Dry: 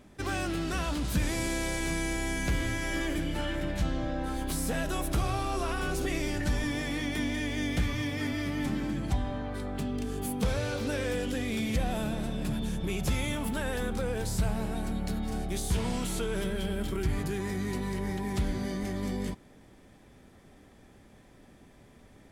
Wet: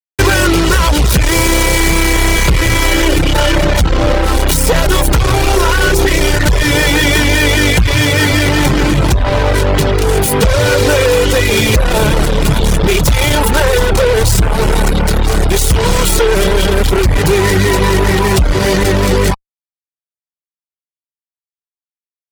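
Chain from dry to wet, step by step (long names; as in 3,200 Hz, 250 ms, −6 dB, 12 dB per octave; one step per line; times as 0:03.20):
phase distortion by the signal itself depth 0.091 ms
comb filter 2.1 ms, depth 79%
downward compressor, threshold −29 dBFS, peak gain reduction 10 dB
fuzz pedal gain 37 dB, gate −41 dBFS
reverb reduction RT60 0.52 s
level +8 dB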